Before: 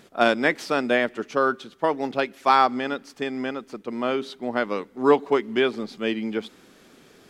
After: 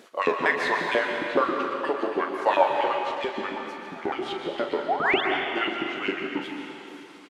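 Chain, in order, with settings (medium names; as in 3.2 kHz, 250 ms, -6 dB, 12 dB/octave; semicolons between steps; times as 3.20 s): sawtooth pitch modulation -9 st, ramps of 458 ms; in parallel at +1 dB: compression, threshold -30 dBFS, peak gain reduction 16 dB; on the sum: painted sound rise, 4.88–5.21 s, 610–3700 Hz -22 dBFS; LFO high-pass saw up 7.4 Hz 270–3500 Hz; doubling 41 ms -9.5 dB; on a send at -2 dB: reverberation RT60 2.7 s, pre-delay 116 ms; on the sum: trim -6.5 dB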